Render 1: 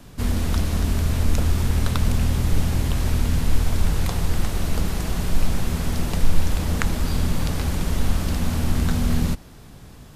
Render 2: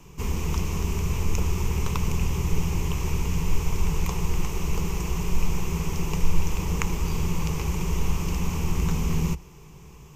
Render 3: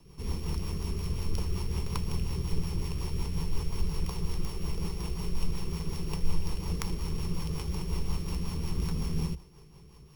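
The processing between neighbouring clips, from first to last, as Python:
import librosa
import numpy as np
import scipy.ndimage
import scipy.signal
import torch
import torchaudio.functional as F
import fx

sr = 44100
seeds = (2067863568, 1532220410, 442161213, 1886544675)

y1 = fx.ripple_eq(x, sr, per_octave=0.75, db=13)
y1 = F.gain(torch.from_numpy(y1), -5.0).numpy()
y2 = np.r_[np.sort(y1[:len(y1) // 8 * 8].reshape(-1, 8), axis=1).ravel(), y1[len(y1) // 8 * 8:]]
y2 = fx.rotary(y2, sr, hz=5.5)
y2 = F.gain(torch.from_numpy(y2), -5.0).numpy()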